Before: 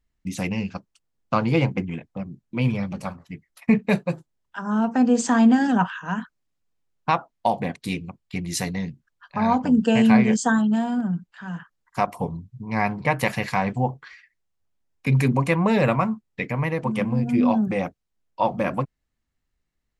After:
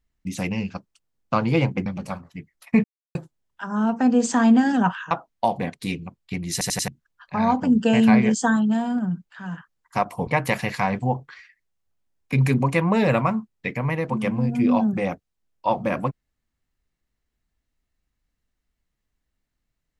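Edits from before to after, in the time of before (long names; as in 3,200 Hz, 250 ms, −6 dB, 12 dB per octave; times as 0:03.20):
0:01.86–0:02.81: remove
0:03.79–0:04.10: silence
0:06.06–0:07.13: remove
0:08.54: stutter in place 0.09 s, 4 plays
0:12.29–0:13.01: remove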